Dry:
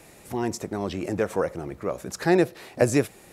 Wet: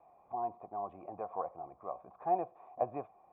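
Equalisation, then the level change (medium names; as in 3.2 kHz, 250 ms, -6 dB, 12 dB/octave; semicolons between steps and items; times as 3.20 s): cascade formant filter a; +2.5 dB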